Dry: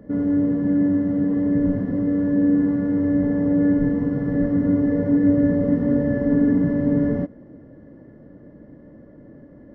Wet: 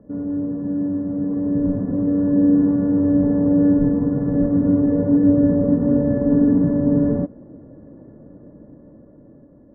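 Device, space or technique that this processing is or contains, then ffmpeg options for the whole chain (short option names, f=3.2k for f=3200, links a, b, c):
action camera in a waterproof case: -af "lowpass=f=1.3k:w=0.5412,lowpass=f=1.3k:w=1.3066,dynaudnorm=f=480:g=7:m=11.5dB,volume=-4.5dB" -ar 24000 -c:a aac -b:a 96k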